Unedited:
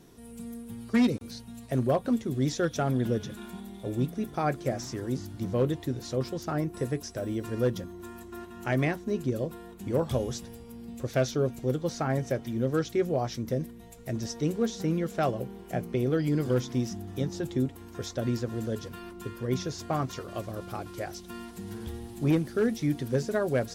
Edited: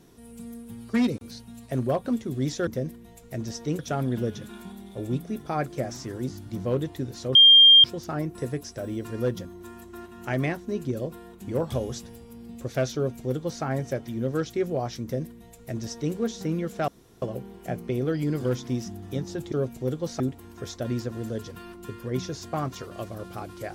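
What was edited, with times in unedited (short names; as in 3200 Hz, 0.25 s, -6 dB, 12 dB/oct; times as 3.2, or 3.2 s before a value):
6.23 add tone 3200 Hz -9.5 dBFS 0.49 s
11.34–12.02 copy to 17.57
13.42–14.54 copy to 2.67
15.27 insert room tone 0.34 s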